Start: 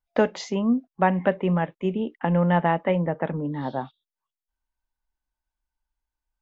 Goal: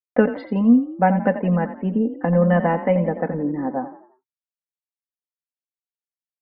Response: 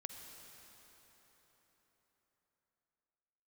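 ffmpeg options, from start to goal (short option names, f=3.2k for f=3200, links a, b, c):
-filter_complex "[0:a]lowpass=1.8k,afftdn=nr=35:nf=-47,agate=range=-33dB:threshold=-46dB:ratio=3:detection=peak,equalizer=f=1.1k:w=1.7:g=-5.5,aecho=1:1:4:0.73,asplit=5[a][b][c][d][e];[b]adelay=86,afreqshift=32,volume=-12dB[f];[c]adelay=172,afreqshift=64,volume=-20.2dB[g];[d]adelay=258,afreqshift=96,volume=-28.4dB[h];[e]adelay=344,afreqshift=128,volume=-36.5dB[i];[a][f][g][h][i]amix=inputs=5:normalize=0,volume=3dB"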